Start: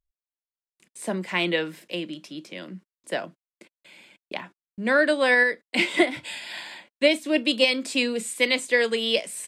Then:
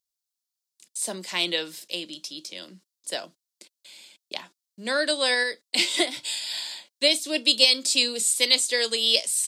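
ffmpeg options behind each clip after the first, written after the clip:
-af "highpass=f=390:p=1,highshelf=f=3100:t=q:w=1.5:g=12.5,volume=0.708"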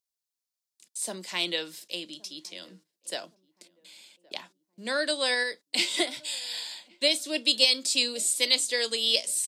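-filter_complex "[0:a]asplit=2[s0][s1];[s1]adelay=1119,lowpass=f=870:p=1,volume=0.0708,asplit=2[s2][s3];[s3]adelay=1119,lowpass=f=870:p=1,volume=0.49,asplit=2[s4][s5];[s5]adelay=1119,lowpass=f=870:p=1,volume=0.49[s6];[s0][s2][s4][s6]amix=inputs=4:normalize=0,volume=0.668"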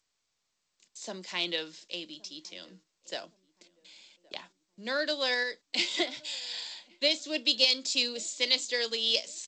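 -af "volume=0.75" -ar 16000 -c:a g722

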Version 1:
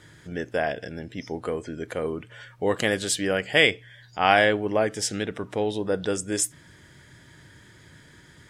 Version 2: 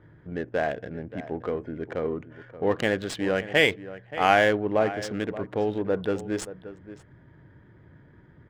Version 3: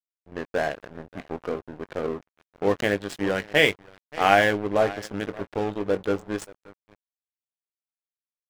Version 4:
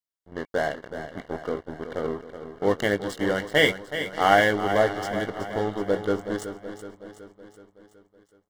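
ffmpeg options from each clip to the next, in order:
-filter_complex "[0:a]adynamicsmooth=sensitivity=4:basefreq=1200,highshelf=f=4100:g=-11,asplit=2[s0][s1];[s1]adelay=577.3,volume=0.2,highshelf=f=4000:g=-13[s2];[s0][s2]amix=inputs=2:normalize=0"
-filter_complex "[0:a]asplit=2[s0][s1];[s1]acrusher=bits=3:mix=0:aa=0.5,volume=0.316[s2];[s0][s2]amix=inputs=2:normalize=0,asplit=2[s3][s4];[s4]adelay=20,volume=0.316[s5];[s3][s5]amix=inputs=2:normalize=0,aeval=exprs='sgn(val(0))*max(abs(val(0))-0.0141,0)':c=same,volume=0.891"
-filter_complex "[0:a]asuperstop=centerf=2500:order=20:qfactor=5.1,asplit=2[s0][s1];[s1]aecho=0:1:374|748|1122|1496|1870|2244:0.299|0.167|0.0936|0.0524|0.0294|0.0164[s2];[s0][s2]amix=inputs=2:normalize=0"

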